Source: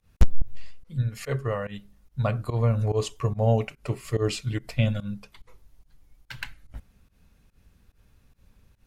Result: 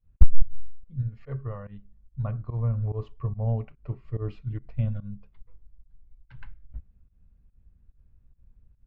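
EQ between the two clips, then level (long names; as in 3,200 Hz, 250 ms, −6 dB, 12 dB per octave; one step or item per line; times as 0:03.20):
dynamic equaliser 1,100 Hz, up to +7 dB, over −47 dBFS, Q 1.6
high-frequency loss of the air 220 metres
RIAA equalisation playback
−15.0 dB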